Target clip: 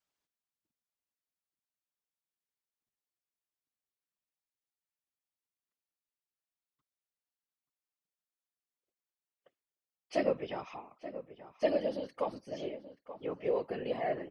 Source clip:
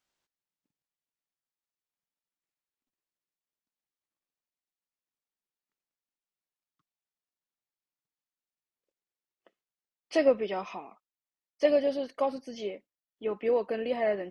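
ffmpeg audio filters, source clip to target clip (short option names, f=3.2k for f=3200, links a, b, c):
-filter_complex "[0:a]afftfilt=real='hypot(re,im)*cos(2*PI*random(0))':imag='hypot(re,im)*sin(2*PI*random(1))':win_size=512:overlap=0.75,asplit=2[a][b];[b]adelay=881,lowpass=f=1.9k:p=1,volume=-12.5dB,asplit=2[c][d];[d]adelay=881,lowpass=f=1.9k:p=1,volume=0.16[e];[a][c][e]amix=inputs=3:normalize=0"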